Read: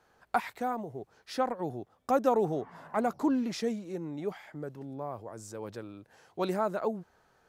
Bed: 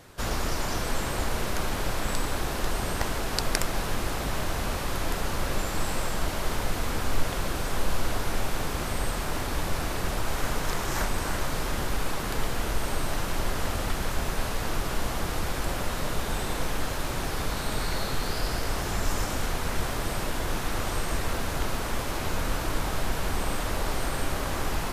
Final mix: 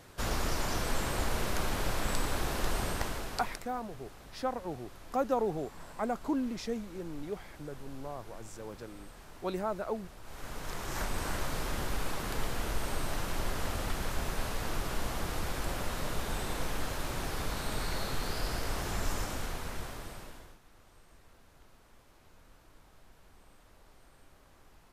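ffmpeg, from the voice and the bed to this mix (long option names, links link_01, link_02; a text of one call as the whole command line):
ffmpeg -i stem1.wav -i stem2.wav -filter_complex "[0:a]adelay=3050,volume=-4dB[link_01];[1:a]volume=13dB,afade=type=out:start_time=2.8:duration=0.84:silence=0.11885,afade=type=in:start_time=10.21:duration=1.02:silence=0.149624,afade=type=out:start_time=19.03:duration=1.55:silence=0.0530884[link_02];[link_01][link_02]amix=inputs=2:normalize=0" out.wav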